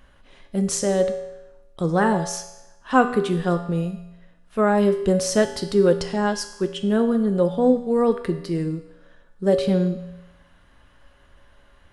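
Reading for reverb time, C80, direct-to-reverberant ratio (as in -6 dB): 0.95 s, 11.5 dB, 6.0 dB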